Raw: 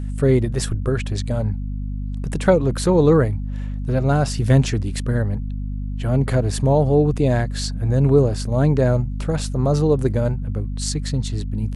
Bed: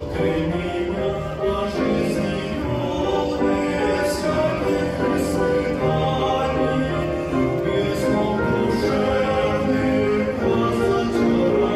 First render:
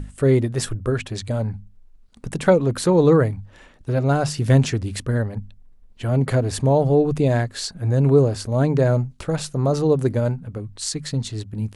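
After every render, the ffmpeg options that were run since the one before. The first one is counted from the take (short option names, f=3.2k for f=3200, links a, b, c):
-af "bandreject=f=50:t=h:w=6,bandreject=f=100:t=h:w=6,bandreject=f=150:t=h:w=6,bandreject=f=200:t=h:w=6,bandreject=f=250:t=h:w=6"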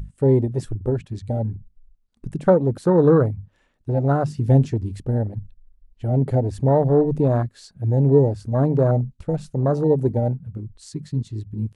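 -af "afwtdn=0.0794"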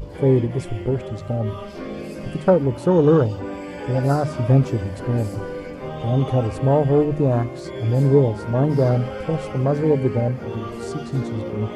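-filter_complex "[1:a]volume=-11dB[a];[0:a][a]amix=inputs=2:normalize=0"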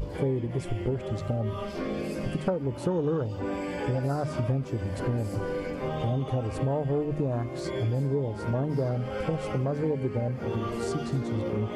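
-af "acompressor=threshold=-25dB:ratio=6"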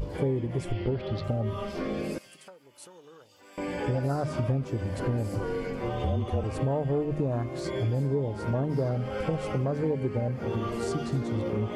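-filter_complex "[0:a]asettb=1/sr,asplit=3[a][b][c];[a]atrim=end=0.724[d];[b]atrim=start=0.72:end=1.24,asetpts=PTS-STARTPTS,afade=t=in:d=0.004:c=qsin,afade=t=out:st=0.516:d=0.004:c=qsin,highshelf=f=5.8k:t=q:w=3:g=-10[e];[c]atrim=start=1.236[f];[d][e]acrossfade=d=0.004:c1=hsin:c2=qsin[g];[g][f]acrossfade=d=0.004:c1=qsin:c2=hsin,asettb=1/sr,asplit=3[h][i][j];[h]atrim=end=2.184[k];[i]atrim=start=2.18:end=3.58,asetpts=PTS-STARTPTS,afade=t=in:d=0.004:c=qsin,afade=t=out:st=1.396:d=0.004:c=qsin,aderivative[l];[j]atrim=start=3.576[m];[k][l]acrossfade=d=0.004:c1=hsin:c2=qsin[n];[n][m]acrossfade=d=0.004:c1=qsin:c2=hsin,asettb=1/sr,asplit=3[o][p][q];[o]atrim=end=5.434[r];[p]atrim=start=5.43:end=6.44,asetpts=PTS-STARTPTS,afade=t=in:d=0.004:c=qsin,afade=t=out:st=1.006:d=0.004:c=qsin,afreqshift=-35[s];[q]atrim=start=6.436[t];[r][s]acrossfade=d=0.004:c1=hsin:c2=qsin[u];[u][t]acrossfade=d=0.004:c1=qsin:c2=hsin"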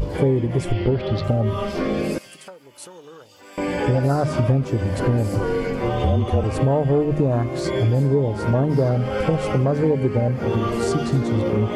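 -af "volume=9dB"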